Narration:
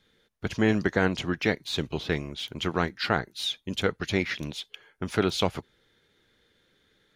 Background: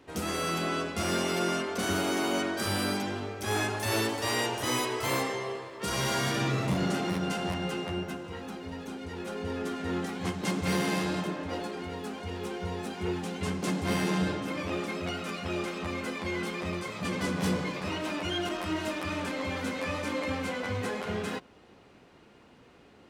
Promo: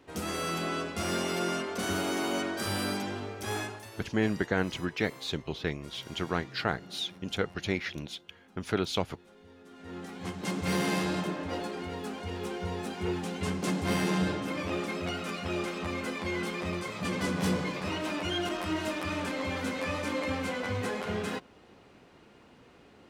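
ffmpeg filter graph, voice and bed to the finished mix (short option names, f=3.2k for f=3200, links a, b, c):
-filter_complex "[0:a]adelay=3550,volume=-4.5dB[a];[1:a]volume=18.5dB,afade=t=out:st=3.41:d=0.5:silence=0.11885,afade=t=in:st=9.66:d=1.21:silence=0.0944061[b];[a][b]amix=inputs=2:normalize=0"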